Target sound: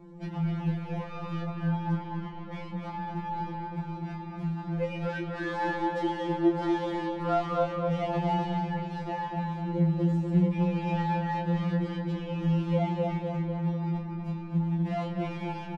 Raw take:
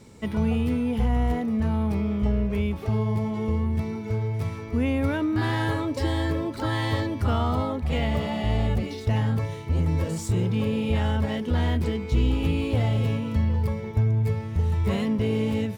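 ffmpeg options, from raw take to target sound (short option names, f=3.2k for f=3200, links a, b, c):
-filter_complex "[0:a]aemphasis=mode=production:type=50fm,acompressor=threshold=-29dB:ratio=2,acrossover=split=510|900[a][b][c];[c]asoftclip=type=tanh:threshold=-37.5dB[d];[a][b][d]amix=inputs=3:normalize=0,adynamicsmooth=sensitivity=4:basefreq=750,asplit=2[e][f];[f]adelay=29,volume=-6.5dB[g];[e][g]amix=inputs=2:normalize=0,asplit=2[h][i];[i]adelay=246,lowpass=f=2.9k:p=1,volume=-3.5dB,asplit=2[j][k];[k]adelay=246,lowpass=f=2.9k:p=1,volume=0.46,asplit=2[l][m];[m]adelay=246,lowpass=f=2.9k:p=1,volume=0.46,asplit=2[n][o];[o]adelay=246,lowpass=f=2.9k:p=1,volume=0.46,asplit=2[p][q];[q]adelay=246,lowpass=f=2.9k:p=1,volume=0.46,asplit=2[r][s];[s]adelay=246,lowpass=f=2.9k:p=1,volume=0.46[t];[j][l][n][p][r][t]amix=inputs=6:normalize=0[u];[h][u]amix=inputs=2:normalize=0,afftfilt=real='re*2.83*eq(mod(b,8),0)':imag='im*2.83*eq(mod(b,8),0)':win_size=2048:overlap=0.75,volume=5.5dB"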